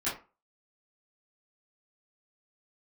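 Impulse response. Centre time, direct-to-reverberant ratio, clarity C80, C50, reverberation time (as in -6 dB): 33 ms, -12.5 dB, 14.0 dB, 7.5 dB, 0.30 s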